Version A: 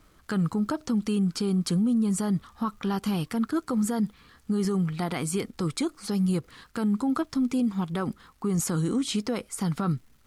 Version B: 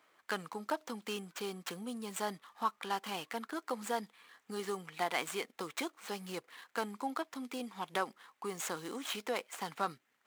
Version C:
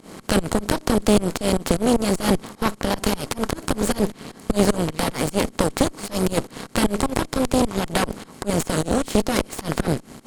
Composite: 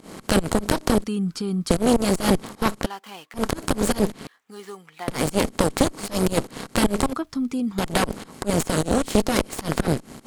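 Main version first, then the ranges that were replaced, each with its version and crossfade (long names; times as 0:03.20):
C
0:01.04–0:01.70: punch in from A
0:02.86–0:03.34: punch in from B
0:04.27–0:05.08: punch in from B
0:07.13–0:07.78: punch in from A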